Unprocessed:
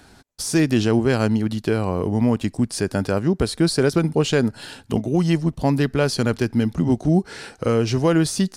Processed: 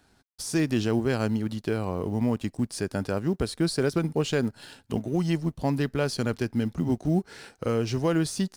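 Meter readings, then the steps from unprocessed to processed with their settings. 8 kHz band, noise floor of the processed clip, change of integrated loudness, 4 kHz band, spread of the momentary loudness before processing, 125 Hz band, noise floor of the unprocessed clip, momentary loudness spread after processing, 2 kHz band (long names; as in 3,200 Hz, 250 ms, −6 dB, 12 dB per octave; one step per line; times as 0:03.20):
−7.5 dB, −64 dBFS, −7.0 dB, −7.0 dB, 5 LU, −7.0 dB, −51 dBFS, 5 LU, −7.0 dB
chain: mu-law and A-law mismatch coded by A
level −6.5 dB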